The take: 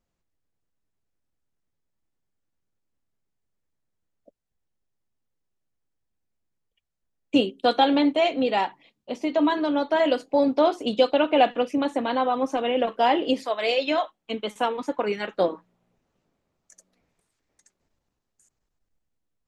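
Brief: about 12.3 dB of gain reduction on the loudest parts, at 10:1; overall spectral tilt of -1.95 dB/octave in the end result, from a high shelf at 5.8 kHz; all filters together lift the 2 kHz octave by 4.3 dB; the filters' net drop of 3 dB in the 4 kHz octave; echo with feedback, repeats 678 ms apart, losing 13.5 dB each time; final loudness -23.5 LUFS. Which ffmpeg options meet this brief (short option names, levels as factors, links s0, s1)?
-af "equalizer=f=2000:t=o:g=8.5,equalizer=f=4000:t=o:g=-8,highshelf=f=5800:g=-5,acompressor=threshold=0.0501:ratio=10,aecho=1:1:678|1356:0.211|0.0444,volume=2.37"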